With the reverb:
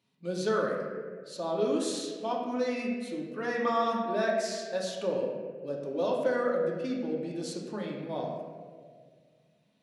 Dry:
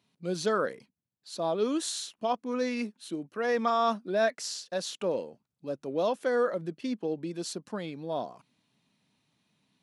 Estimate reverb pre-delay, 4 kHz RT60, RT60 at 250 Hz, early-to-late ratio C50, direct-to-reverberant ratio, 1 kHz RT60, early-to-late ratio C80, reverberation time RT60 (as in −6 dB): 3 ms, 1.1 s, 2.2 s, 2.5 dB, −2.5 dB, 1.5 s, 4.0 dB, 1.8 s